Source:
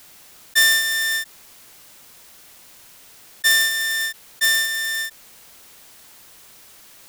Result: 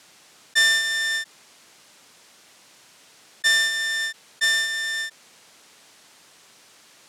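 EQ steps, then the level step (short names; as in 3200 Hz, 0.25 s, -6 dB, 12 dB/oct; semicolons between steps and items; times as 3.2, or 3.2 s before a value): BPF 140–7800 Hz; -2.0 dB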